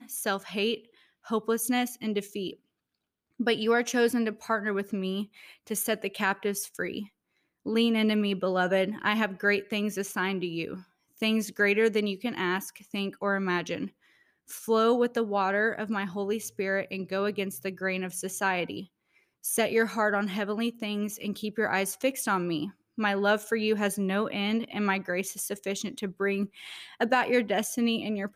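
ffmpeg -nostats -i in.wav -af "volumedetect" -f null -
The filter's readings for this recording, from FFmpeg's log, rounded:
mean_volume: -29.2 dB
max_volume: -12.1 dB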